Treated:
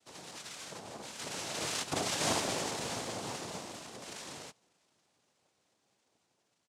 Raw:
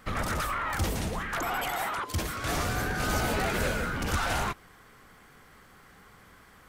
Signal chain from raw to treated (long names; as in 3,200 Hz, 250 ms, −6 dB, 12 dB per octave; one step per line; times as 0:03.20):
source passing by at 0:02.12, 38 m/s, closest 9.6 metres
comb filter 5.7 ms
cochlear-implant simulation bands 2